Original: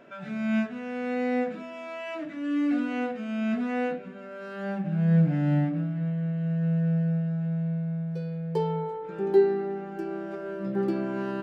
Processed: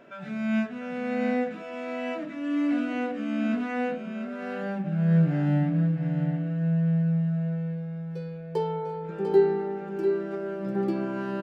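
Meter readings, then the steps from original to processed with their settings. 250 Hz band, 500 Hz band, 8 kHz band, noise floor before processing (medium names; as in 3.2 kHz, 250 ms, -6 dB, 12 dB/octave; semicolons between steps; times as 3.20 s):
+0.5 dB, +1.0 dB, no reading, -40 dBFS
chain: delay 697 ms -7.5 dB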